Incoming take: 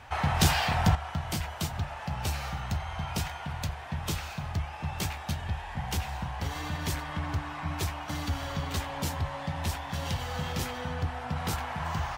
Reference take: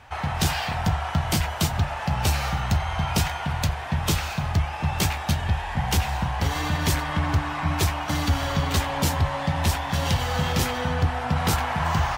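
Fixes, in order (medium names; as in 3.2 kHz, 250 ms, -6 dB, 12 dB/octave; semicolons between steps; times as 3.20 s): gain correction +9 dB, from 0.95 s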